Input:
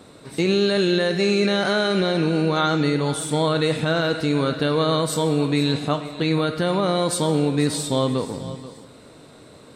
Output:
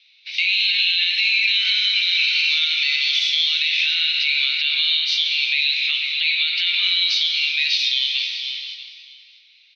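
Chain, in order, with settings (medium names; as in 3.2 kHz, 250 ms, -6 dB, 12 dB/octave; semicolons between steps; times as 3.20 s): 1.74–3.95 s: zero-crossing glitches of -26 dBFS; gate -39 dBFS, range -17 dB; Chebyshev band-pass 2.3–6.1 kHz, order 4; compression, threshold -35 dBFS, peak gain reduction 9.5 dB; distance through air 310 m; doubling 22 ms -12 dB; delay 641 ms -17.5 dB; gated-style reverb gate 410 ms flat, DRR 7 dB; loudness maximiser +35 dB; trim -7.5 dB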